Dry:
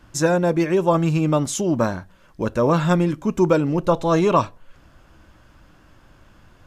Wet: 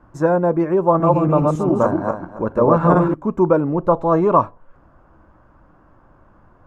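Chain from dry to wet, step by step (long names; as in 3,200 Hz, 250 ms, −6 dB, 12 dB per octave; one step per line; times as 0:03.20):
0:00.86–0:03.14: feedback delay that plays each chunk backwards 139 ms, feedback 43%, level −1 dB
drawn EQ curve 100 Hz 0 dB, 1,100 Hz +6 dB, 3,300 Hz −19 dB
level −1.5 dB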